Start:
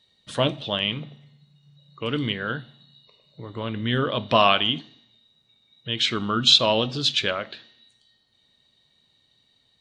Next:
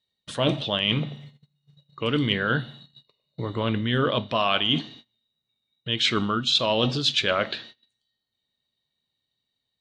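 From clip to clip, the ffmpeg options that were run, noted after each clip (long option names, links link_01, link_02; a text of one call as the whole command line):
ffmpeg -i in.wav -af "agate=range=-24dB:threshold=-52dB:ratio=16:detection=peak,areverse,acompressor=threshold=-27dB:ratio=10,areverse,volume=8dB" out.wav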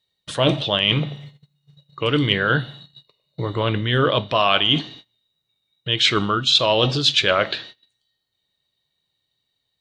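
ffmpeg -i in.wav -af "equalizer=frequency=230:width=6.1:gain=-11.5,volume=5.5dB" out.wav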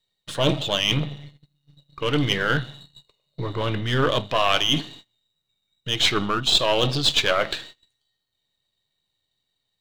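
ffmpeg -i in.wav -af "aeval=exprs='if(lt(val(0),0),0.447*val(0),val(0))':channel_layout=same" out.wav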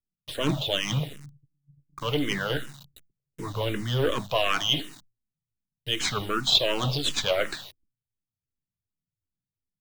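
ffmpeg -i in.wav -filter_complex "[0:a]acrossover=split=290[link_01][link_02];[link_02]acrusher=bits=6:mix=0:aa=0.000001[link_03];[link_01][link_03]amix=inputs=2:normalize=0,asplit=2[link_04][link_05];[link_05]afreqshift=-2.7[link_06];[link_04][link_06]amix=inputs=2:normalize=1,volume=-1dB" out.wav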